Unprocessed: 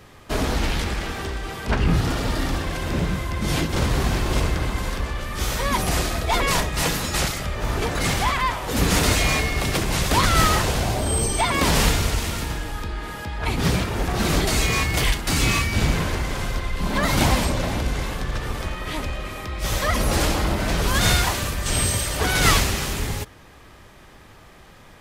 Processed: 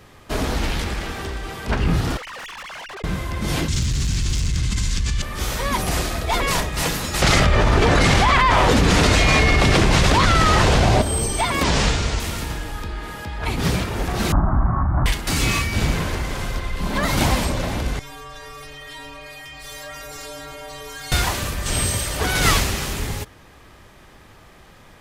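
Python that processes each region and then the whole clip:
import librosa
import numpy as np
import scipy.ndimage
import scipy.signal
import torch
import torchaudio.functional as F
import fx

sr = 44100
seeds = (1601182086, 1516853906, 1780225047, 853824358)

y = fx.chain(x, sr, fx.sine_speech(),
    fx.highpass(hz=720.0, slope=12),
    fx.tube_stage(drive_db=33.0, bias=0.75), at=(2.17, 3.04))
y = fx.chain(y, sr, fx.curve_eq(hz=(140.0, 220.0, 630.0, 2300.0, 7100.0, 15000.0), db=(0, -7, -24, -6, 6, -19)),
    fx.clip_hard(threshold_db=-18.0),
    fx.env_flatten(amount_pct=100), at=(3.68, 5.22))
y = fx.chain(y, sr, fx.air_absorb(metres=69.0),
    fx.env_flatten(amount_pct=100), at=(7.22, 11.02))
y = fx.chain(y, sr, fx.lowpass(hz=7400.0, slope=24),
    fx.doubler(ms=15.0, db=-10.5), at=(11.63, 12.2))
y = fx.chain(y, sr, fx.halfwave_hold(),
    fx.steep_lowpass(hz=1400.0, slope=36),
    fx.fixed_phaser(hz=1100.0, stages=4), at=(14.32, 15.06))
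y = fx.chain(y, sr, fx.peak_eq(hz=170.0, db=-12.5, octaves=1.5),
    fx.stiff_resonator(f0_hz=140.0, decay_s=0.79, stiffness=0.008),
    fx.env_flatten(amount_pct=70), at=(17.99, 21.12))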